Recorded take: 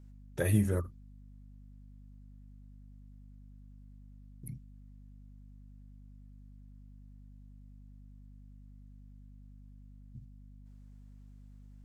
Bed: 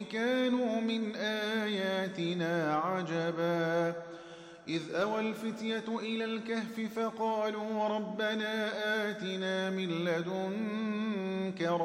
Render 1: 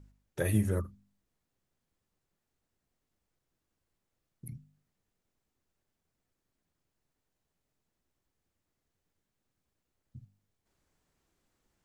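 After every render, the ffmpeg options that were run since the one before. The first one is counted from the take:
-af "bandreject=f=50:t=h:w=4,bandreject=f=100:t=h:w=4,bandreject=f=150:t=h:w=4,bandreject=f=200:t=h:w=4,bandreject=f=250:t=h:w=4"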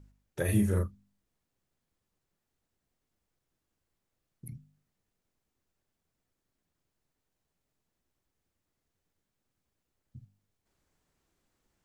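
-filter_complex "[0:a]asettb=1/sr,asplit=3[a][b][c];[a]atrim=end=0.454[d];[b]atrim=start=0.45:end=0.88,asetpts=PTS-STARTPTS,afade=t=in:d=0.004:c=qsin,afade=t=out:st=0.426:d=0.004:c=qsin,asplit=2[e][f];[f]adelay=34,volume=-3dB[g];[e][g]amix=inputs=2:normalize=0,atrim=end_sample=18963[h];[c]atrim=start=0.876[i];[d][h]acrossfade=d=0.004:c1=hsin:c2=qsin[j];[j][i]acrossfade=d=0.004:c1=qsin:c2=hsin"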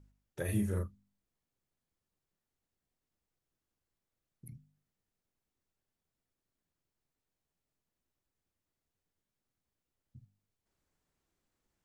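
-af "volume=-6dB"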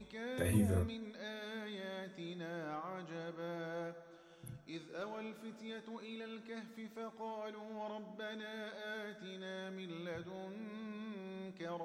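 -filter_complex "[1:a]volume=-13dB[a];[0:a][a]amix=inputs=2:normalize=0"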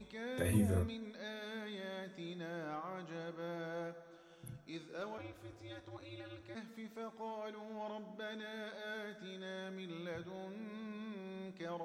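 -filter_complex "[0:a]asplit=3[a][b][c];[a]afade=t=out:st=5.17:d=0.02[d];[b]aeval=exprs='val(0)*sin(2*PI*120*n/s)':c=same,afade=t=in:st=5.17:d=0.02,afade=t=out:st=6.54:d=0.02[e];[c]afade=t=in:st=6.54:d=0.02[f];[d][e][f]amix=inputs=3:normalize=0"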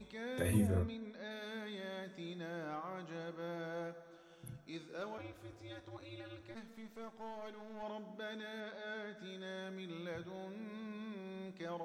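-filter_complex "[0:a]asettb=1/sr,asplit=3[a][b][c];[a]atrim=end=0.674[d];[b]atrim=start=0.67:end=1.31,asetpts=PTS-STARTPTS,afade=t=in:d=0.004:c=qsin,afade=t=out:st=0.636:d=0.004:c=qsin,lowpass=f=2.9k:p=1[e];[c]atrim=start=1.306[f];[d][e]acrossfade=d=0.004:c1=hsin:c2=qsin[g];[g][f]acrossfade=d=0.004:c1=qsin:c2=hsin,asettb=1/sr,asplit=3[h][i][j];[h]atrim=end=6.514[k];[i]atrim=start=6.51:end=7.83,asetpts=PTS-STARTPTS,afade=t=in:d=0.004:c=qsin,afade=t=out:st=1.316:d=0.004:c=qsin,aeval=exprs='if(lt(val(0),0),0.447*val(0),val(0))':c=same[l];[j]atrim=start=7.826[m];[k][l]acrossfade=d=0.004:c1=hsin:c2=qsin[n];[n][m]acrossfade=d=0.004:c1=qsin:c2=hsin,asettb=1/sr,asplit=3[o][p][q];[o]atrim=end=8.604[r];[p]atrim=start=8.6:end=9.17,asetpts=PTS-STARTPTS,afade=t=in:d=0.004:c=qsin,afade=t=out:st=0.566:d=0.004:c=qsin,adynamicsmooth=sensitivity=7:basefreq=5.6k[s];[q]atrim=start=9.166[t];[r][s]acrossfade=d=0.004:c1=hsin:c2=qsin[u];[u][t]acrossfade=d=0.004:c1=qsin:c2=hsin"

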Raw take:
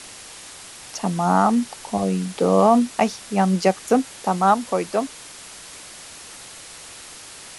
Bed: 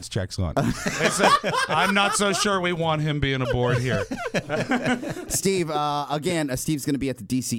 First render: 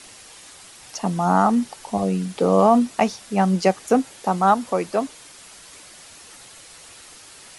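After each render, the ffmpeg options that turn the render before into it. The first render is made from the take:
-af "afftdn=nr=6:nf=-41"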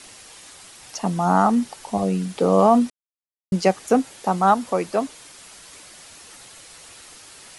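-filter_complex "[0:a]asplit=3[a][b][c];[a]atrim=end=2.9,asetpts=PTS-STARTPTS,afade=t=out:st=2.896:d=0.004:c=hsin[d];[b]atrim=start=2.9:end=3.52,asetpts=PTS-STARTPTS,volume=0[e];[c]atrim=start=3.52,asetpts=PTS-STARTPTS,afade=t=in:d=0.004:c=hsin[f];[d][e][f]concat=n=3:v=0:a=1"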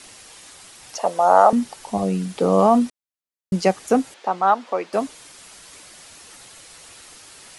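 -filter_complex "[0:a]asettb=1/sr,asplit=3[a][b][c];[a]atrim=end=0.984[d];[b]atrim=start=0.98:end=1.53,asetpts=PTS-STARTPTS,afade=t=in:d=0.004:c=qsin,afade=t=out:st=0.546:d=0.004:c=qsin,highpass=f=550:t=q:w=4.9[e];[c]atrim=start=1.526[f];[d][e]acrossfade=d=0.004:c1=hsin:c2=qsin[g];[g][f]acrossfade=d=0.004:c1=qsin:c2=hsin,asettb=1/sr,asplit=3[h][i][j];[h]atrim=end=4.144[k];[i]atrim=start=4.14:end=4.93,asetpts=PTS-STARTPTS,afade=t=in:d=0.004:c=qsin,afade=t=out:st=0.786:d=0.004:c=qsin,highpass=400,lowpass=3.8k[l];[j]atrim=start=4.926[m];[k][l]acrossfade=d=0.004:c1=hsin:c2=qsin[n];[n][m]acrossfade=d=0.004:c1=qsin:c2=hsin"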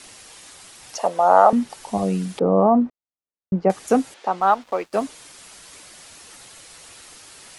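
-filter_complex "[0:a]asettb=1/sr,asplit=3[a][b][c];[a]atrim=end=1.074[d];[b]atrim=start=1.07:end=1.7,asetpts=PTS-STARTPTS,afade=t=in:d=0.004:c=qsin,afade=t=out:st=0.626:d=0.004:c=qsin,acrossover=split=3900[e][f];[f]acompressor=threshold=-48dB:ratio=4:attack=1:release=60[g];[e][g]amix=inputs=2:normalize=0[h];[c]atrim=start=1.696[i];[d][h]acrossfade=d=0.004:c1=hsin:c2=qsin[j];[j][i]acrossfade=d=0.004:c1=qsin:c2=hsin,asettb=1/sr,asplit=3[k][l][m];[k]atrim=end=2.394[n];[l]atrim=start=2.39:end=3.7,asetpts=PTS-STARTPTS,afade=t=in:d=0.004:c=qsin,afade=t=out:st=1.306:d=0.004:c=qsin,lowpass=1k[o];[m]atrim=start=3.696[p];[n][o]acrossfade=d=0.004:c1=hsin:c2=qsin[q];[q][p]acrossfade=d=0.004:c1=qsin:c2=hsin,asettb=1/sr,asplit=3[r][s][t];[r]atrim=end=4.404[u];[s]atrim=start=4.4:end=5.04,asetpts=PTS-STARTPTS,afade=t=in:d=0.004:c=qsin,afade=t=out:st=0.636:d=0.004:c=qsin,aeval=exprs='sgn(val(0))*max(abs(val(0))-0.00531,0)':c=same[v];[t]atrim=start=5.036[w];[u][v]acrossfade=d=0.004:c1=hsin:c2=qsin[x];[x][w]acrossfade=d=0.004:c1=qsin:c2=hsin"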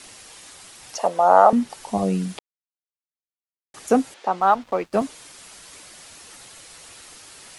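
-filter_complex "[0:a]asettb=1/sr,asplit=3[a][b][c];[a]atrim=end=4.554[d];[b]atrim=start=4.55:end=5.02,asetpts=PTS-STARTPTS,afade=t=in:d=0.004:c=qsin,afade=t=out:st=0.466:d=0.004:c=qsin,bass=f=250:g=9,treble=f=4k:g=-2[e];[c]atrim=start=5.016[f];[d][e]acrossfade=d=0.004:c1=hsin:c2=qsin[g];[g][f]acrossfade=d=0.004:c1=qsin:c2=hsin,asplit=3[h][i][j];[h]atrim=end=2.39,asetpts=PTS-STARTPTS,afade=t=out:st=2.386:d=0.004:c=hsin[k];[i]atrim=start=2.39:end=3.74,asetpts=PTS-STARTPTS,volume=0[l];[j]atrim=start=3.74,asetpts=PTS-STARTPTS,afade=t=in:d=0.004:c=hsin[m];[k][l][m]concat=n=3:v=0:a=1"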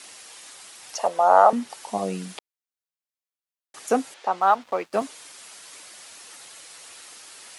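-af "highpass=f=510:p=1"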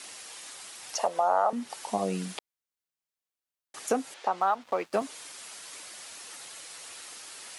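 -af "acompressor=threshold=-24dB:ratio=3"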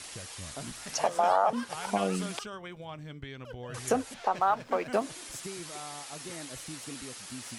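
-filter_complex "[1:a]volume=-19.5dB[a];[0:a][a]amix=inputs=2:normalize=0"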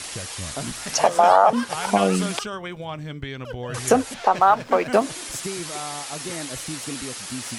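-af "volume=10dB"

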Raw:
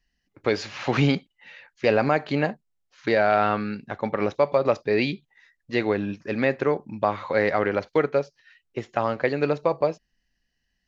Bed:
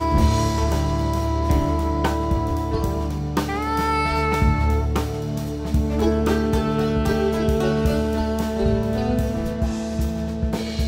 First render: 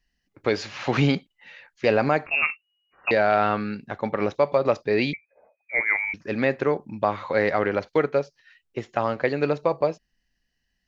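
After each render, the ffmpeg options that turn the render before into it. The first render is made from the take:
-filter_complex "[0:a]asettb=1/sr,asplit=3[a][b][c];[a]atrim=end=2.264[d];[b]atrim=start=2.26:end=3.11,asetpts=PTS-STARTPTS,afade=t=in:d=0.004:c=qsin,afade=t=out:st=0.846:d=0.004:c=qsin,lowpass=f=2.5k:t=q:w=0.5098,lowpass=f=2.5k:t=q:w=0.6013,lowpass=f=2.5k:t=q:w=0.9,lowpass=f=2.5k:t=q:w=2.563,afreqshift=-2900[e];[c]atrim=start=3.106[f];[d][e]acrossfade=d=0.004:c1=hsin:c2=qsin[g];[g][f]acrossfade=d=0.004:c1=qsin:c2=hsin,asettb=1/sr,asplit=3[h][i][j];[h]atrim=end=5.134[k];[i]atrim=start=5.13:end=6.14,asetpts=PTS-STARTPTS,afade=t=in:d=0.004:c=qsin,afade=t=out:st=1.006:d=0.004:c=qsin,lowpass=f=2.1k:t=q:w=0.5098,lowpass=f=2.1k:t=q:w=0.6013,lowpass=f=2.1k:t=q:w=0.9,lowpass=f=2.1k:t=q:w=2.563,afreqshift=-2500[l];[j]atrim=start=6.136[m];[k][l]acrossfade=d=0.004:c1=hsin:c2=qsin[n];[n][m]acrossfade=d=0.004:c1=qsin:c2=hsin"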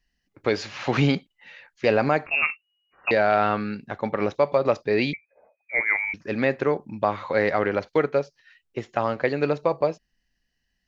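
-af anull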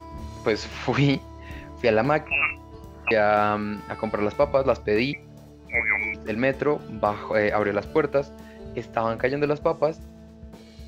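-filter_complex "[1:a]volume=-20dB[a];[0:a][a]amix=inputs=2:normalize=0"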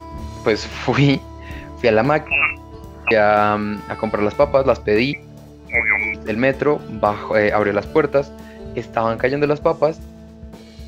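-af "volume=6dB,alimiter=limit=-2dB:level=0:latency=1"

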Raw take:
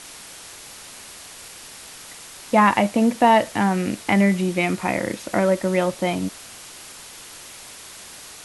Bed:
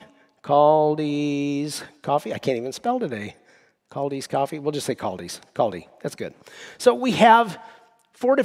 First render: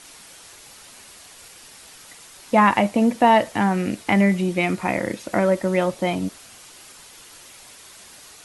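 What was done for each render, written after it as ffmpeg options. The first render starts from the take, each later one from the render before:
-af "afftdn=nr=6:nf=-41"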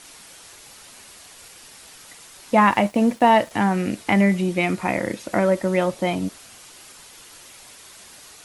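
-filter_complex "[0:a]asettb=1/sr,asplit=3[a][b][c];[a]atrim=end=2.604[d];[b]atrim=start=2.6:end=3.51,asetpts=PTS-STARTPTS,afade=t=in:d=0.004:c=qsin,afade=t=out:st=0.906:d=0.004:c=qsin,aeval=exprs='sgn(val(0))*max(abs(val(0))-0.00668,0)':c=same[e];[c]atrim=start=3.506[f];[d][e]acrossfade=d=0.004:c1=hsin:c2=qsin[g];[g][f]acrossfade=d=0.004:c1=qsin:c2=hsin"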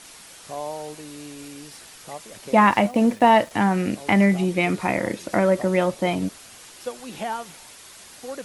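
-filter_complex "[1:a]volume=-16dB[a];[0:a][a]amix=inputs=2:normalize=0"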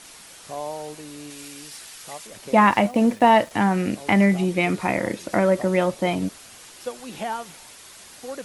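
-filter_complex "[0:a]asettb=1/sr,asplit=3[a][b][c];[a]atrim=end=1.304[d];[b]atrim=start=1.3:end=2.27,asetpts=PTS-STARTPTS,afade=t=in:d=0.004:c=qsin,afade=t=out:st=0.966:d=0.004:c=qsin,tiltshelf=f=1.1k:g=-4[e];[c]atrim=start=2.266[f];[d][e]acrossfade=d=0.004:c1=hsin:c2=qsin[g];[g][f]acrossfade=d=0.004:c1=qsin:c2=hsin"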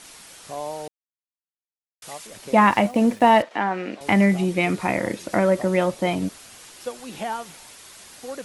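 -filter_complex "[0:a]asettb=1/sr,asplit=3[a][b][c];[a]atrim=end=3.424[d];[b]atrim=start=3.42:end=4.01,asetpts=PTS-STARTPTS,afade=t=in:d=0.004:c=qsin,afade=t=out:st=0.586:d=0.004:c=qsin,highpass=370,lowpass=3.3k[e];[c]atrim=start=4.006[f];[d][e]acrossfade=d=0.004:c1=hsin:c2=qsin[g];[g][f]acrossfade=d=0.004:c1=qsin:c2=hsin,asplit=3[h][i][j];[h]atrim=end=0.88,asetpts=PTS-STARTPTS,afade=t=out:st=0.876:d=0.004:c=hsin[k];[i]atrim=start=0.88:end=2.02,asetpts=PTS-STARTPTS,volume=0[l];[j]atrim=start=2.02,asetpts=PTS-STARTPTS,afade=t=in:d=0.004:c=hsin[m];[k][l][m]concat=n=3:v=0:a=1"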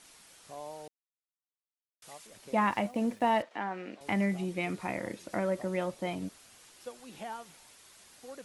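-af "volume=-12dB"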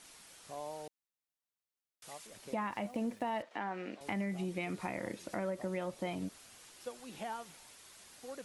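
-af "alimiter=limit=-22.5dB:level=0:latency=1:release=146,acompressor=threshold=-35dB:ratio=2.5"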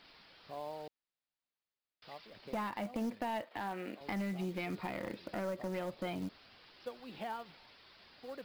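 -af "aresample=11025,aeval=exprs='clip(val(0),-1,0.0237)':c=same,aresample=44100,acrusher=bits=6:mode=log:mix=0:aa=0.000001"

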